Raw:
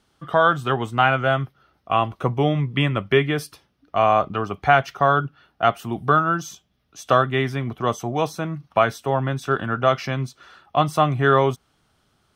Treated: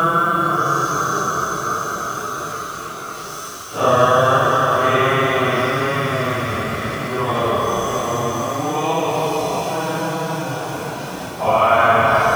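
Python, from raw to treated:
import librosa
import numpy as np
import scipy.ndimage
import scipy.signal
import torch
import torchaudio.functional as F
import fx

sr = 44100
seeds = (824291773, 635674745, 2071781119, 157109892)

y = fx.spec_trails(x, sr, decay_s=2.65)
y = np.where(np.abs(y) >= 10.0 ** (-29.5 / 20.0), y, 0.0)
y = fx.paulstretch(y, sr, seeds[0], factor=4.6, window_s=0.05, from_s=6.28)
y = y * librosa.db_to_amplitude(-1.0)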